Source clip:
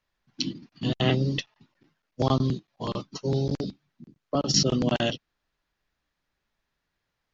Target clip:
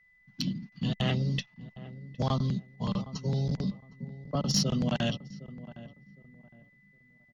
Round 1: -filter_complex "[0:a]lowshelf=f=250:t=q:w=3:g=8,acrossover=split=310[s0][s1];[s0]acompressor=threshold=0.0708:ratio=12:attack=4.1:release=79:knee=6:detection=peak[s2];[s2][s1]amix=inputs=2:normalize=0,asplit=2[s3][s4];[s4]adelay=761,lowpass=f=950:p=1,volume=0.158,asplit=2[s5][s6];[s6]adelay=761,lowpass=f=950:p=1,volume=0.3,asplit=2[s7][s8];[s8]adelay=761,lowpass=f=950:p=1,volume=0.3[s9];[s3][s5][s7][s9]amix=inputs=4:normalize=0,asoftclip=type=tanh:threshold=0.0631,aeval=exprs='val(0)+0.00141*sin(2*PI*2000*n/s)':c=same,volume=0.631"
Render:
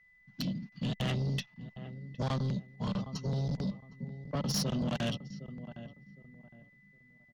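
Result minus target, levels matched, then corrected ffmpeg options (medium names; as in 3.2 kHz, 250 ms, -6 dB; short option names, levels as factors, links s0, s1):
saturation: distortion +13 dB
-filter_complex "[0:a]lowshelf=f=250:t=q:w=3:g=8,acrossover=split=310[s0][s1];[s0]acompressor=threshold=0.0708:ratio=12:attack=4.1:release=79:knee=6:detection=peak[s2];[s2][s1]amix=inputs=2:normalize=0,asplit=2[s3][s4];[s4]adelay=761,lowpass=f=950:p=1,volume=0.158,asplit=2[s5][s6];[s6]adelay=761,lowpass=f=950:p=1,volume=0.3,asplit=2[s7][s8];[s8]adelay=761,lowpass=f=950:p=1,volume=0.3[s9];[s3][s5][s7][s9]amix=inputs=4:normalize=0,asoftclip=type=tanh:threshold=0.237,aeval=exprs='val(0)+0.00141*sin(2*PI*2000*n/s)':c=same,volume=0.631"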